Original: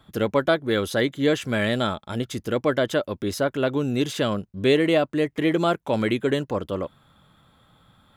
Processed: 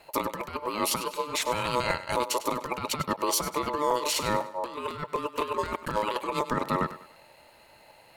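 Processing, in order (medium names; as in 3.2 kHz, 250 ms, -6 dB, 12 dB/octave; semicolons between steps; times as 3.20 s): treble shelf 4.8 kHz +9.5 dB; compressor with a negative ratio -25 dBFS, ratio -0.5; ring modulator 740 Hz; on a send: thinning echo 99 ms, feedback 37%, high-pass 190 Hz, level -13.5 dB; on the sum: crackling interface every 0.25 s, samples 256, repeat, from 0.40 s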